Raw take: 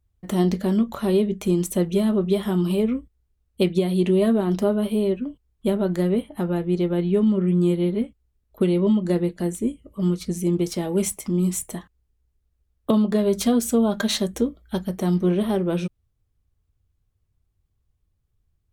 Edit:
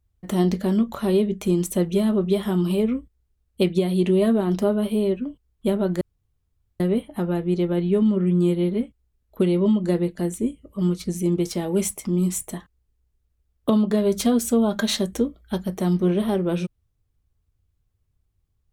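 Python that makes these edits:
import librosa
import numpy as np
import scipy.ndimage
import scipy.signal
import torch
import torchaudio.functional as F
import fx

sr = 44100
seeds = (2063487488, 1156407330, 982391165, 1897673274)

y = fx.edit(x, sr, fx.insert_room_tone(at_s=6.01, length_s=0.79), tone=tone)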